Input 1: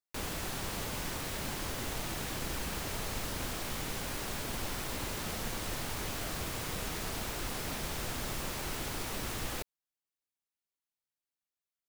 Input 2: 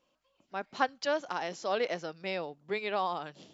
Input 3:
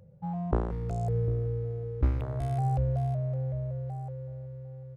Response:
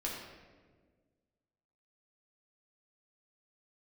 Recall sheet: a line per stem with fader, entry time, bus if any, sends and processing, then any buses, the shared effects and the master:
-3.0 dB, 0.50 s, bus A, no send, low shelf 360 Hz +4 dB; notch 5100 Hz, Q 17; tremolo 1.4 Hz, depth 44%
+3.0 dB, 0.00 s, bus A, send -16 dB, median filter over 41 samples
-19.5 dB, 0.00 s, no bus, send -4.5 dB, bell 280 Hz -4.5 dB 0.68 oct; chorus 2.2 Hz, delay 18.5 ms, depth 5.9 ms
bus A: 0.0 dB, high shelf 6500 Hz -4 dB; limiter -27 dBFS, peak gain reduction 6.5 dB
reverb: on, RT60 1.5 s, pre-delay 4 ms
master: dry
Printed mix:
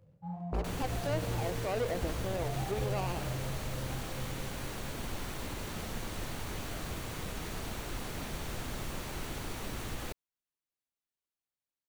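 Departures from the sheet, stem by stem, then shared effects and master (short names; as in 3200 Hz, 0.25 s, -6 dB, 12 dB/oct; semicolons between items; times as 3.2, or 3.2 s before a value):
stem 1: missing tremolo 1.4 Hz, depth 44%; stem 3 -19.5 dB -> -8.0 dB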